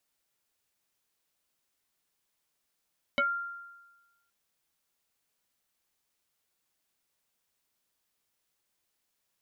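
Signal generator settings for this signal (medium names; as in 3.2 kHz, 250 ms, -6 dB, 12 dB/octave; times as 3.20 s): FM tone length 1.12 s, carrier 1.39 kHz, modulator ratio 0.59, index 2.4, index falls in 0.15 s exponential, decay 1.21 s, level -22 dB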